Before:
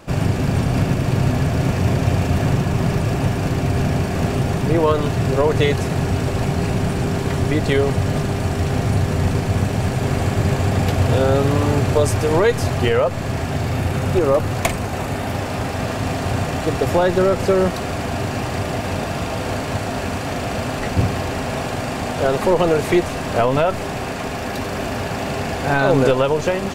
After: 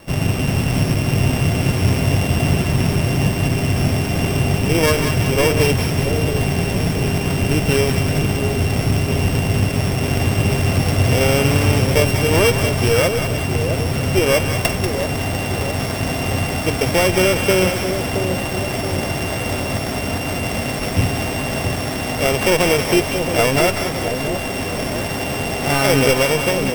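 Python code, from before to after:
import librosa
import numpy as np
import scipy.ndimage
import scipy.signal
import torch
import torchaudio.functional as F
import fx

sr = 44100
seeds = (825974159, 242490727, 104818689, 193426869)

y = np.r_[np.sort(x[:len(x) // 16 * 16].reshape(-1, 16), axis=1).ravel(), x[len(x) // 16 * 16:]]
y = fx.vibrato(y, sr, rate_hz=1.0, depth_cents=5.2)
y = fx.echo_split(y, sr, split_hz=700.0, low_ms=673, high_ms=189, feedback_pct=52, wet_db=-6.5)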